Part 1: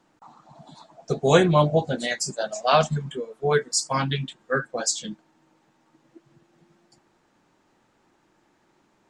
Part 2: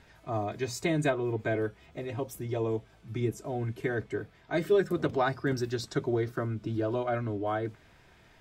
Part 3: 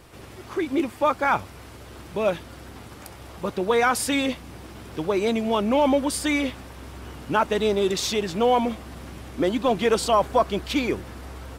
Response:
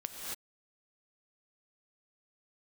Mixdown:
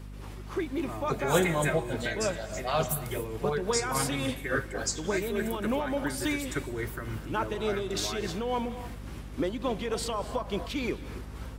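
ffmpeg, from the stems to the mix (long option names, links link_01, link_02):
-filter_complex "[0:a]volume=-8dB,asplit=2[link_01][link_02];[link_02]volume=-10.5dB[link_03];[1:a]aexciter=amount=13.6:drive=2.8:freq=7200,equalizer=frequency=2000:width_type=o:width=1.4:gain=12,adelay=600,volume=-5.5dB,asplit=2[link_04][link_05];[link_05]volume=-12.5dB[link_06];[2:a]volume=-4dB,asplit=2[link_07][link_08];[link_08]volume=-15dB[link_09];[link_04][link_07]amix=inputs=2:normalize=0,equalizer=frequency=700:width=8:gain=-9.5,acompressor=threshold=-27dB:ratio=6,volume=0dB[link_10];[3:a]atrim=start_sample=2205[link_11];[link_03][link_06][link_09]amix=inputs=3:normalize=0[link_12];[link_12][link_11]afir=irnorm=-1:irlink=0[link_13];[link_01][link_10][link_13]amix=inputs=3:normalize=0,tremolo=f=3.5:d=0.48,aeval=exprs='val(0)+0.00891*(sin(2*PI*50*n/s)+sin(2*PI*2*50*n/s)/2+sin(2*PI*3*50*n/s)/3+sin(2*PI*4*50*n/s)/4+sin(2*PI*5*50*n/s)/5)':channel_layout=same"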